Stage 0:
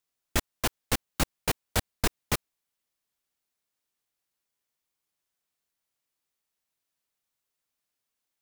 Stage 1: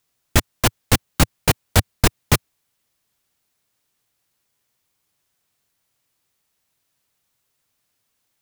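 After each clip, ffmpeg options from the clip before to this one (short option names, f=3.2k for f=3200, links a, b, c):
-filter_complex "[0:a]equalizer=f=110:t=o:w=1.3:g=7.5,asplit=2[a][b];[b]alimiter=limit=-18.5dB:level=0:latency=1:release=70,volume=-2dB[c];[a][c]amix=inputs=2:normalize=0,volume=6.5dB"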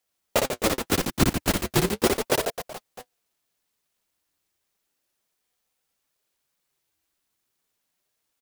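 -af "aecho=1:1:60|144|261.6|426.2|656.7:0.631|0.398|0.251|0.158|0.1,flanger=delay=0.6:depth=9:regen=45:speed=0.8:shape=triangular,aeval=exprs='val(0)*sin(2*PI*410*n/s+410*0.55/0.35*sin(2*PI*0.35*n/s))':c=same"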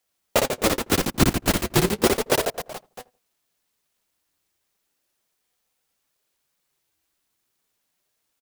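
-filter_complex "[0:a]asplit=2[a][b];[b]adelay=81,lowpass=f=840:p=1,volume=-20.5dB,asplit=2[c][d];[d]adelay=81,lowpass=f=840:p=1,volume=0.31[e];[a][c][e]amix=inputs=3:normalize=0,volume=2.5dB"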